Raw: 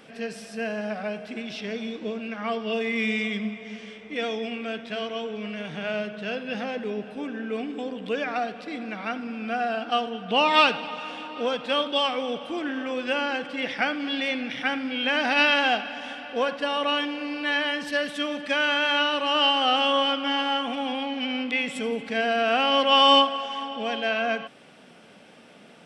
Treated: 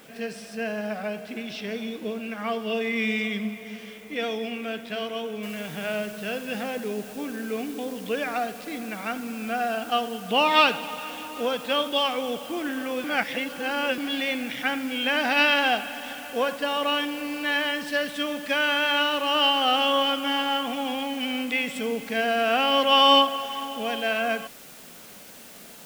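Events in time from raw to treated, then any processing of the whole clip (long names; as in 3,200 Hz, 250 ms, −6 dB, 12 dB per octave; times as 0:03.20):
0:05.43: noise floor change −57 dB −47 dB
0:13.04–0:13.98: reverse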